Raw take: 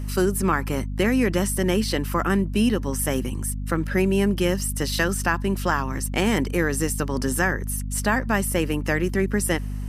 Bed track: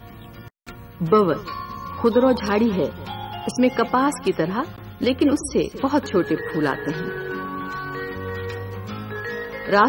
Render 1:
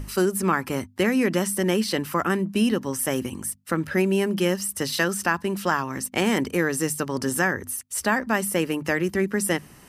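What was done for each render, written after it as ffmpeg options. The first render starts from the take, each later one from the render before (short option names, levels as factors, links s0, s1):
-af "bandreject=f=50:t=h:w=6,bandreject=f=100:t=h:w=6,bandreject=f=150:t=h:w=6,bandreject=f=200:t=h:w=6,bandreject=f=250:t=h:w=6"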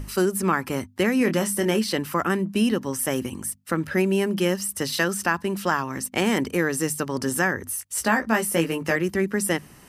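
-filter_complex "[0:a]asettb=1/sr,asplit=3[s0][s1][s2];[s0]atrim=end=1.184[s3];[s1]atrim=start=1.18:end=1.79,asetpts=PTS-STARTPTS,afade=t=in:d=0.004:c=qsin,afade=t=out:st=0.606:d=0.004:c=qsin,asplit=2[s4][s5];[s5]adelay=24,volume=0.398[s6];[s4][s6]amix=inputs=2:normalize=0,atrim=end_sample=26901[s7];[s2]atrim=start=1.786[s8];[s3][s7]acrossfade=d=0.004:c1=hsin:c2=qsin[s9];[s9][s8]acrossfade=d=0.004:c1=qsin:c2=hsin,asettb=1/sr,asplit=3[s10][s11][s12];[s10]atrim=end=7.674[s13];[s11]atrim=start=7.67:end=8.96,asetpts=PTS-STARTPTS,afade=t=in:d=0.004:c=qsin,afade=t=out:st=1.286:d=0.004:c=qsin,asplit=2[s14][s15];[s15]adelay=18,volume=0.562[s16];[s14][s16]amix=inputs=2:normalize=0,atrim=end_sample=56889[s17];[s12]atrim=start=8.956[s18];[s13][s17]acrossfade=d=0.004:c1=hsin:c2=qsin[s19];[s19][s18]acrossfade=d=0.004:c1=qsin:c2=hsin"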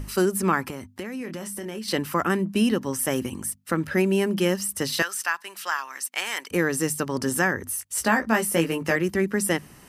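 -filter_complex "[0:a]asettb=1/sr,asplit=3[s0][s1][s2];[s0]atrim=end=0.704[s3];[s1]atrim=start=0.7:end=1.88,asetpts=PTS-STARTPTS,afade=t=in:d=0.004:c=qsin,afade=t=out:st=1.176:d=0.004:c=qsin,acompressor=threshold=0.0282:ratio=5:attack=3.2:release=140:knee=1:detection=peak[s4];[s2]atrim=start=1.876[s5];[s3][s4]acrossfade=d=0.004:c1=hsin:c2=qsin[s6];[s6][s5]acrossfade=d=0.004:c1=qsin:c2=hsin,asettb=1/sr,asplit=3[s7][s8][s9];[s7]atrim=end=5.024[s10];[s8]atrim=start=5.02:end=6.51,asetpts=PTS-STARTPTS,afade=t=in:d=0.004:c=qsin,afade=t=out:st=1.486:d=0.004:c=qsin,highpass=1200[s11];[s9]atrim=start=6.506[s12];[s10][s11]acrossfade=d=0.004:c1=hsin:c2=qsin[s13];[s13][s12]acrossfade=d=0.004:c1=qsin:c2=hsin"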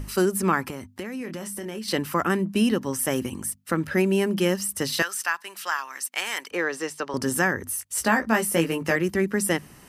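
-filter_complex "[0:a]asettb=1/sr,asplit=3[s0][s1][s2];[s0]atrim=end=6.504[s3];[s1]atrim=start=6.5:end=7.14,asetpts=PTS-STARTPTS,afade=t=in:d=0.004:c=qsin,afade=t=out:st=0.636:d=0.004:c=qsin,acrossover=split=360 6000:gain=0.112 1 0.126[s4][s5][s6];[s4][s5][s6]amix=inputs=3:normalize=0[s7];[s2]atrim=start=7.136[s8];[s3][s7]acrossfade=d=0.004:c1=hsin:c2=qsin[s9];[s9][s8]acrossfade=d=0.004:c1=qsin:c2=hsin"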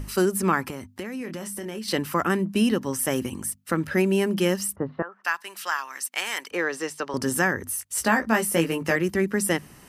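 -filter_complex "[0:a]asplit=3[s0][s1][s2];[s0]afade=t=out:st=4.74:d=0.02[s3];[s1]lowpass=f=1200:w=0.5412,lowpass=f=1200:w=1.3066,afade=t=in:st=4.74:d=0.02,afade=t=out:st=5.24:d=0.02[s4];[s2]afade=t=in:st=5.24:d=0.02[s5];[s3][s4][s5]amix=inputs=3:normalize=0"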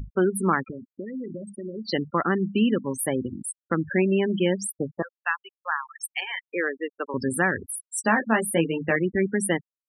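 -af "afftfilt=real='re*gte(hypot(re,im),0.0708)':imag='im*gte(hypot(re,im),0.0708)':win_size=1024:overlap=0.75"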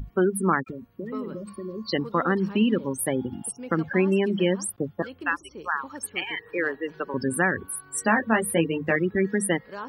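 -filter_complex "[1:a]volume=0.0891[s0];[0:a][s0]amix=inputs=2:normalize=0"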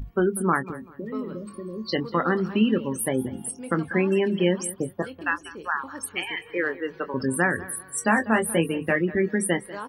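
-filter_complex "[0:a]asplit=2[s0][s1];[s1]adelay=23,volume=0.282[s2];[s0][s2]amix=inputs=2:normalize=0,aecho=1:1:193|386:0.126|0.034"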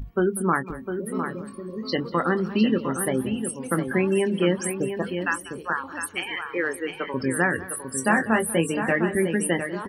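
-af "aecho=1:1:705:0.398"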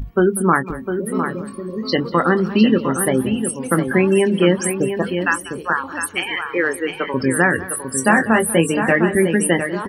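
-af "volume=2.24,alimiter=limit=0.891:level=0:latency=1"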